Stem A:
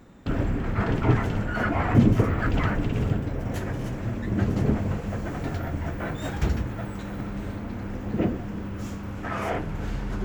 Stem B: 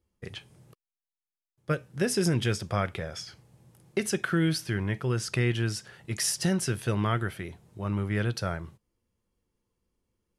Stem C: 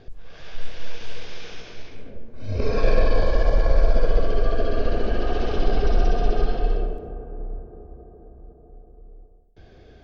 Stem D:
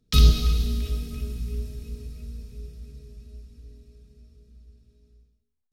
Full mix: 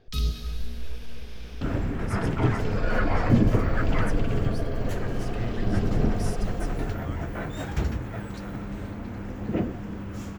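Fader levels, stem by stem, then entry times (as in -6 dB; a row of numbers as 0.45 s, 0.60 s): -2.0 dB, -15.5 dB, -9.5 dB, -11.0 dB; 1.35 s, 0.00 s, 0.00 s, 0.00 s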